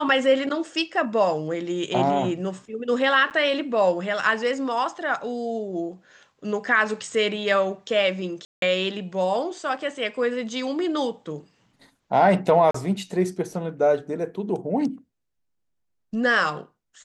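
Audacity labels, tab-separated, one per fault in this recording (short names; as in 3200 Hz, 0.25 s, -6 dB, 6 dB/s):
3.300000	3.310000	gap 9 ms
8.450000	8.620000	gap 0.172 s
12.710000	12.740000	gap 34 ms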